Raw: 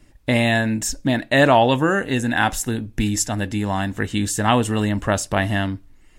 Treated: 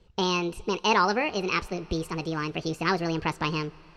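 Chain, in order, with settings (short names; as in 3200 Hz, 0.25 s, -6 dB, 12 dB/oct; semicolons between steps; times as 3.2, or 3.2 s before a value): LPF 4000 Hz 24 dB/oct; wide varispeed 1.56×; on a send: reverb RT60 5.6 s, pre-delay 80 ms, DRR 23 dB; on the sum: gain -7.5 dB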